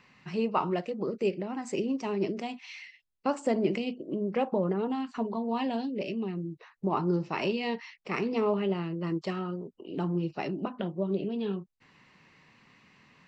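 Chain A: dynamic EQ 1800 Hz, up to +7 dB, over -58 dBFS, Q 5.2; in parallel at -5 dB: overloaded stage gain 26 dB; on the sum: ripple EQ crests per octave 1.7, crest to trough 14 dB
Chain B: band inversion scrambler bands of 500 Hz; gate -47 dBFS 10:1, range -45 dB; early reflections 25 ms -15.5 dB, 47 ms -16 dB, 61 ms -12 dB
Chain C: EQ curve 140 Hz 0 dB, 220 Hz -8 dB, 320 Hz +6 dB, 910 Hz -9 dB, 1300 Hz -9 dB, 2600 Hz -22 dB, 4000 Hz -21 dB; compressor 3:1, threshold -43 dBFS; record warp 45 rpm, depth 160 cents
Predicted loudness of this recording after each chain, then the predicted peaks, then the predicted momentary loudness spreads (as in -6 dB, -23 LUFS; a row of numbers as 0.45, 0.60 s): -26.5, -31.5, -43.5 LUFS; -10.5, -13.0, -28.0 dBFS; 9, 9, 5 LU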